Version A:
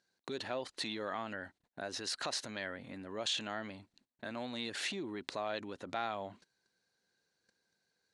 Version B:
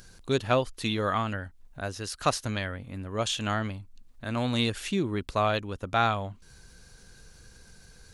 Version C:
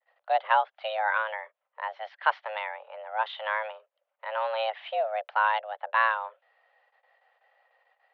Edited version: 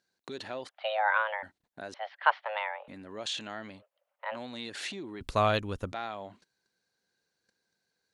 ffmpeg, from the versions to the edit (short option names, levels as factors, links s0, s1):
-filter_complex "[2:a]asplit=3[s0][s1][s2];[0:a]asplit=5[s3][s4][s5][s6][s7];[s3]atrim=end=0.692[s8];[s0]atrim=start=0.688:end=1.432[s9];[s4]atrim=start=1.428:end=1.942[s10];[s1]atrim=start=1.938:end=2.882[s11];[s5]atrim=start=2.878:end=3.83[s12];[s2]atrim=start=3.77:end=4.37[s13];[s6]atrim=start=4.31:end=5.212[s14];[1:a]atrim=start=5.208:end=5.922[s15];[s7]atrim=start=5.918[s16];[s8][s9]acrossfade=d=0.004:c1=hsin:c2=hsin[s17];[s17][s10]acrossfade=d=0.004:c1=hsin:c2=hsin[s18];[s18][s11]acrossfade=d=0.004:c1=hsin:c2=hsin[s19];[s19][s12]acrossfade=d=0.004:c1=hsin:c2=hsin[s20];[s20][s13]acrossfade=d=0.06:c1=tri:c2=tri[s21];[s21][s14]acrossfade=d=0.06:c1=tri:c2=tri[s22];[s22][s15]acrossfade=d=0.004:c1=hsin:c2=hsin[s23];[s23][s16]acrossfade=d=0.004:c1=hsin:c2=hsin"